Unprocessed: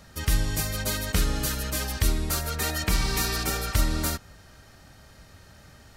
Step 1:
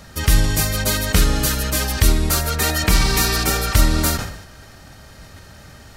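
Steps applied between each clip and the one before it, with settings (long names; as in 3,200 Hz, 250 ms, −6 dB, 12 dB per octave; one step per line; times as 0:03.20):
level that may fall only so fast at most 68 dB per second
level +8.5 dB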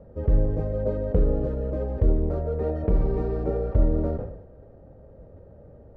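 low-pass with resonance 510 Hz, resonance Q 4.9
low-shelf EQ 110 Hz +4 dB
level −8.5 dB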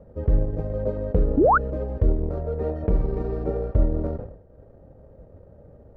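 transient designer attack +1 dB, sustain −7 dB
sound drawn into the spectrogram rise, 0:01.37–0:01.58, 240–1,600 Hz −16 dBFS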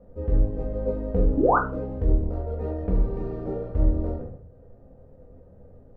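rectangular room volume 210 cubic metres, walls furnished, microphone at 1.9 metres
level −6.5 dB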